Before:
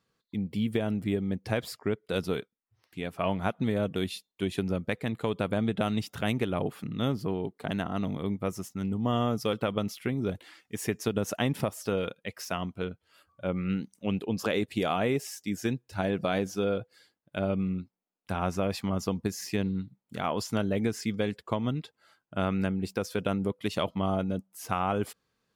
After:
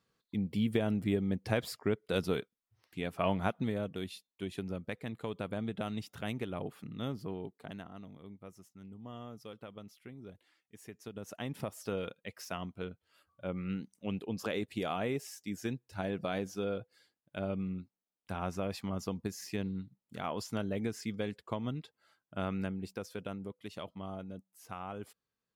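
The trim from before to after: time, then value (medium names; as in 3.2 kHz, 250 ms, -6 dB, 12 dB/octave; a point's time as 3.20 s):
3.40 s -2 dB
3.92 s -9 dB
7.45 s -9 dB
8.07 s -19 dB
10.91 s -19 dB
11.80 s -7 dB
22.57 s -7 dB
23.60 s -14 dB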